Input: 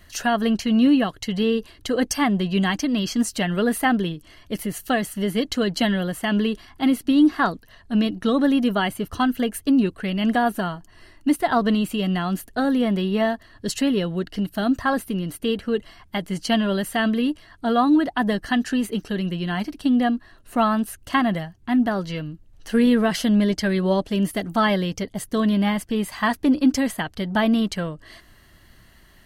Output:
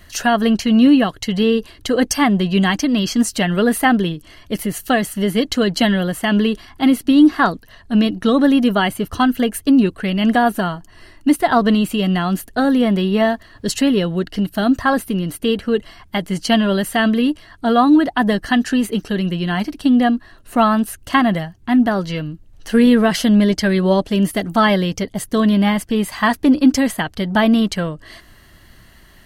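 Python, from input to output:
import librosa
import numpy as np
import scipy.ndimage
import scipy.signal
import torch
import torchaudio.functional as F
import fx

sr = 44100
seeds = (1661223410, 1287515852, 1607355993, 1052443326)

y = fx.dmg_noise_colour(x, sr, seeds[0], colour='brown', level_db=-57.0, at=(13.2, 13.99), fade=0.02)
y = y * librosa.db_to_amplitude(5.5)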